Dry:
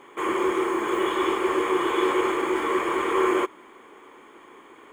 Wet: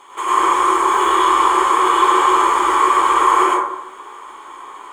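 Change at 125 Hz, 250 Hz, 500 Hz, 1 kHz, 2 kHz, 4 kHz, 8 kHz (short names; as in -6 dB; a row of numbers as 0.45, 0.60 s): n/a, +0.5 dB, +1.0 dB, +15.0 dB, +7.0 dB, +9.5 dB, +14.5 dB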